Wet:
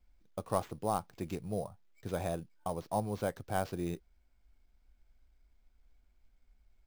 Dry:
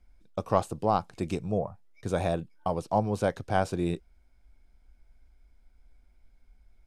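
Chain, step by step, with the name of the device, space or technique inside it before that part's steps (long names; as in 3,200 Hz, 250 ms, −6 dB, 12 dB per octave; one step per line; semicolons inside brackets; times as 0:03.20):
early companding sampler (sample-rate reduction 9,900 Hz, jitter 0%; log-companded quantiser 8 bits)
level −7.5 dB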